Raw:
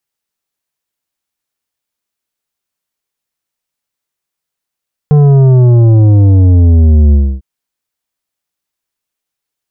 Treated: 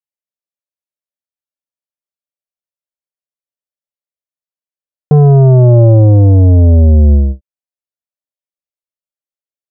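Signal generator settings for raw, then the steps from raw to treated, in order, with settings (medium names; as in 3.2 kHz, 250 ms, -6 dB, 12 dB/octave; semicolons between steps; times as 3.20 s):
sub drop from 150 Hz, over 2.30 s, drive 9.5 dB, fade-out 0.28 s, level -4 dB
gate with hold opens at -7 dBFS; peaking EQ 580 Hz +12.5 dB 0.41 oct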